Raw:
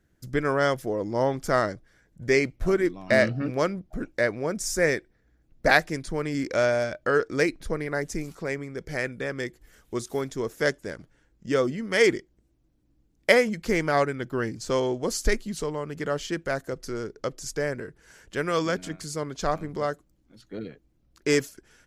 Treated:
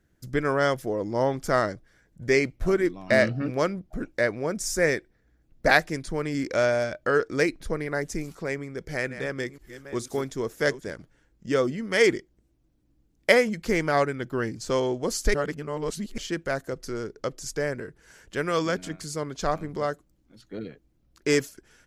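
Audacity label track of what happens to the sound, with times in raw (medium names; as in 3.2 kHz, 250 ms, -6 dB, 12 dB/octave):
8.590000	10.910000	chunks repeated in reverse 497 ms, level -12 dB
15.340000	16.180000	reverse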